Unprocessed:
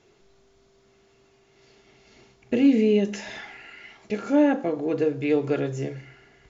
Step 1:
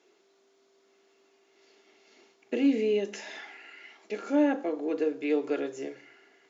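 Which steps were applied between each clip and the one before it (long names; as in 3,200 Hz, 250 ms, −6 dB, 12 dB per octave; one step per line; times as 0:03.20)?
Chebyshev high-pass filter 290 Hz, order 3
level −4 dB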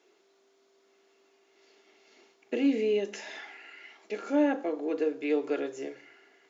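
bass and treble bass −4 dB, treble −1 dB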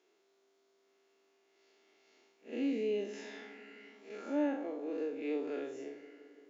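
spectrum smeared in time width 110 ms
feedback echo with a low-pass in the loop 170 ms, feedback 78%, low-pass 1,200 Hz, level −16.5 dB
level −6 dB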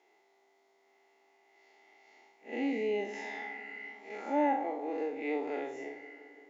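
hollow resonant body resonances 820/2,000 Hz, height 18 dB, ringing for 25 ms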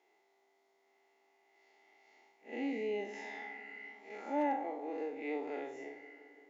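hard clipping −20.5 dBFS, distortion −39 dB
level −4.5 dB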